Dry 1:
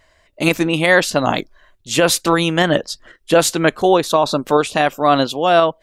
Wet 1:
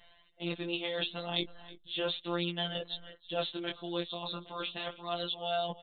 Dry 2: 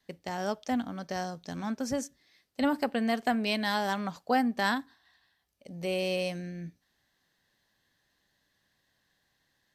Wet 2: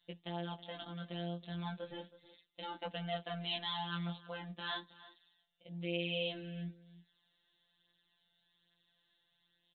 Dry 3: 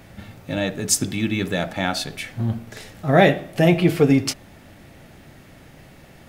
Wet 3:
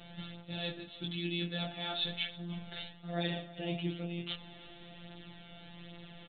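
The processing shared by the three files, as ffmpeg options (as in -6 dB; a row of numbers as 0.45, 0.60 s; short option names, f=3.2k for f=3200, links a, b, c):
-filter_complex "[0:a]areverse,acompressor=threshold=-30dB:ratio=5,areverse,afftfilt=real='hypot(re,im)*cos(PI*b)':imag='0':win_size=1024:overlap=0.75,flanger=delay=16:depth=6.9:speed=0.36,aexciter=amount=6.7:drive=3.9:freq=3.1k,asplit=2[a][b];[b]adelay=320.7,volume=-17dB,highshelf=f=4k:g=-7.22[c];[a][c]amix=inputs=2:normalize=0,aresample=8000,aresample=44100"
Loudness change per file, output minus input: -20.0, -10.0, -17.5 LU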